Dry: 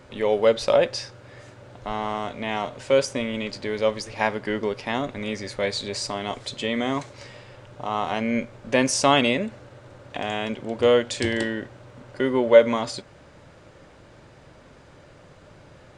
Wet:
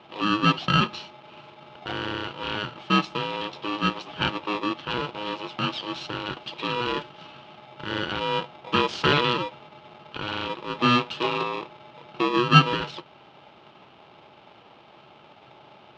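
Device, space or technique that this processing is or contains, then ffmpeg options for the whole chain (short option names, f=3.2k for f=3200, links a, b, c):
ring modulator pedal into a guitar cabinet: -af "aeval=exprs='val(0)*sgn(sin(2*PI*730*n/s))':c=same,highpass=91,equalizer=f=140:t=q:w=4:g=3,equalizer=f=350:t=q:w=4:g=7,equalizer=f=800:t=q:w=4:g=4,equalizer=f=1.9k:t=q:w=4:g=-6,equalizer=f=3k:t=q:w=4:g=7,lowpass=f=4k:w=0.5412,lowpass=f=4k:w=1.3066,volume=-3dB"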